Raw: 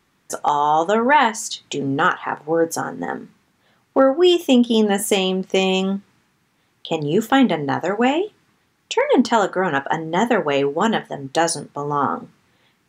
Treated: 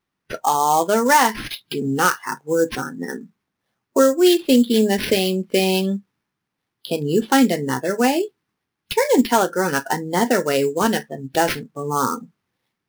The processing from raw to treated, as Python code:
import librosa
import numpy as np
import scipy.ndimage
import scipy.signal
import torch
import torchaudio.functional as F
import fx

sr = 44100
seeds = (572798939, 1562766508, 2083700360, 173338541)

y = fx.sample_hold(x, sr, seeds[0], rate_hz=7500.0, jitter_pct=20)
y = fx.noise_reduce_blind(y, sr, reduce_db=16)